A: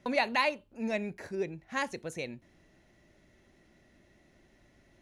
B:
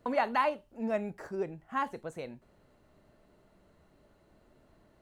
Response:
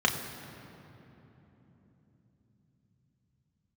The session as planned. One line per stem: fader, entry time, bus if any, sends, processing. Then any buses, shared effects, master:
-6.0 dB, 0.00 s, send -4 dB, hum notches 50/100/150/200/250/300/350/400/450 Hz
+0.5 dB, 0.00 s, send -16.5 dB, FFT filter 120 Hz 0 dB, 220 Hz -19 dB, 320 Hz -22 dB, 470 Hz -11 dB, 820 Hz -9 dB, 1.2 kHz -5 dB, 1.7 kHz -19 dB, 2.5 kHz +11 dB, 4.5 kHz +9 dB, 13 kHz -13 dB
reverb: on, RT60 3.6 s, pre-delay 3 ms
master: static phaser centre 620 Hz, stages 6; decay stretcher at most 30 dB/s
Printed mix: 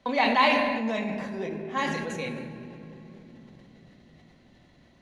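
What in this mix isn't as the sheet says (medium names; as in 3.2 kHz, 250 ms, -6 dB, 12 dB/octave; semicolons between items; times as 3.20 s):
stem B: polarity flipped; master: missing static phaser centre 620 Hz, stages 6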